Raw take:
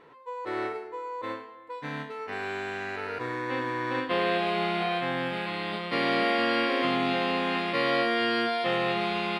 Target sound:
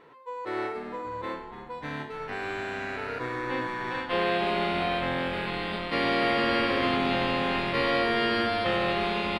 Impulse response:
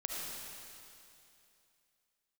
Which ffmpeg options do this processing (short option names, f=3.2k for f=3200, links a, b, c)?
-filter_complex "[0:a]asettb=1/sr,asplit=3[a][b][c];[a]atrim=end=3.674[d];[b]atrim=start=3.67:end=4.13,asetpts=PTS-STARTPTS,afade=t=in:d=0.004:c=qsin,afade=t=out:st=0.456:d=0.004:c=qsin,lowshelf=f=470:g=-10[e];[c]atrim=start=4.126[f];[d][e]acrossfade=d=0.004:c1=hsin:c2=qsin[g];[g][f]acrossfade=d=0.004:c1=qsin:c2=hsin,asplit=7[h][i][j][k][l][m][n];[i]adelay=292,afreqshift=-130,volume=-10.5dB[o];[j]adelay=584,afreqshift=-260,volume=-15.9dB[p];[k]adelay=876,afreqshift=-390,volume=-21.2dB[q];[l]adelay=1168,afreqshift=-520,volume=-26.6dB[r];[m]adelay=1460,afreqshift=-650,volume=-31.9dB[s];[n]adelay=1752,afreqshift=-780,volume=-37.3dB[t];[h][o][p][q][r][s][t]amix=inputs=7:normalize=0"